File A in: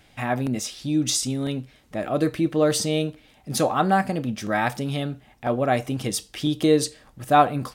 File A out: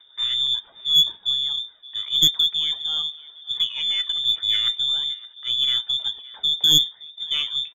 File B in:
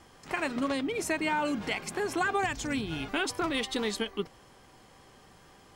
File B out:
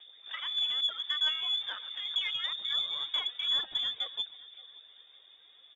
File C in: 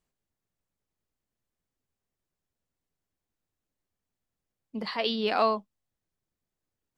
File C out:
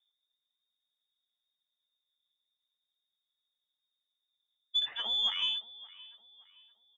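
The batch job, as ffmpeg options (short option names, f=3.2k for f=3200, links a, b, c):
-filter_complex "[0:a]acrossover=split=2900[a][b];[b]acompressor=threshold=-47dB:ratio=4:attack=1:release=60[c];[a][c]amix=inputs=2:normalize=0,equalizer=f=125:t=o:w=1:g=9,equalizer=f=250:t=o:w=1:g=10,equalizer=f=500:t=o:w=1:g=-5,equalizer=f=1k:t=o:w=1:g=-12,aphaser=in_gain=1:out_gain=1:delay=3.7:decay=0.48:speed=0.44:type=triangular,lowpass=f=3.1k:t=q:w=0.5098,lowpass=f=3.1k:t=q:w=0.6013,lowpass=f=3.1k:t=q:w=0.9,lowpass=f=3.1k:t=q:w=2.563,afreqshift=-3700,asplit=2[d][e];[e]aecho=0:1:569|1138|1707:0.1|0.035|0.0123[f];[d][f]amix=inputs=2:normalize=0,aeval=exprs='0.891*(cos(1*acos(clip(val(0)/0.891,-1,1)))-cos(1*PI/2))+0.398*(cos(2*acos(clip(val(0)/0.891,-1,1)))-cos(2*PI/2))+0.141*(cos(4*acos(clip(val(0)/0.891,-1,1)))-cos(4*PI/2))':c=same,volume=-5.5dB"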